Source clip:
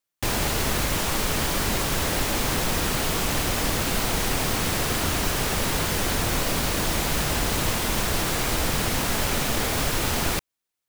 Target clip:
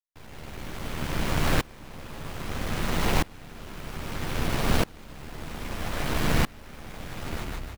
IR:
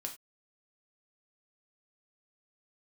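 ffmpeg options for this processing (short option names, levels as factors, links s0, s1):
-filter_complex "[0:a]highpass=f=150:p=1,bass=f=250:g=10,treble=f=4000:g=-10,bandreject=f=50:t=h:w=6,bandreject=f=100:t=h:w=6,bandreject=f=150:t=h:w=6,bandreject=f=200:t=h:w=6,bandreject=f=250:t=h:w=6,bandreject=f=300:t=h:w=6,bandreject=f=350:t=h:w=6,bandreject=f=400:t=h:w=6,aeval=exprs='max(val(0),0)':c=same,atempo=1.4,asplit=2[s0][s1];[s1]adelay=13,volume=0.596[s2];[s0][s2]amix=inputs=2:normalize=0,asplit=6[s3][s4][s5][s6][s7][s8];[s4]adelay=152,afreqshift=-31,volume=0.668[s9];[s5]adelay=304,afreqshift=-62,volume=0.266[s10];[s6]adelay=456,afreqshift=-93,volume=0.107[s11];[s7]adelay=608,afreqshift=-124,volume=0.0427[s12];[s8]adelay=760,afreqshift=-155,volume=0.0172[s13];[s3][s9][s10][s11][s12][s13]amix=inputs=6:normalize=0,aeval=exprs='val(0)*pow(10,-27*if(lt(mod(-0.62*n/s,1),2*abs(-0.62)/1000),1-mod(-0.62*n/s,1)/(2*abs(-0.62)/1000),(mod(-0.62*n/s,1)-2*abs(-0.62)/1000)/(1-2*abs(-0.62)/1000))/20)':c=same,volume=1.58"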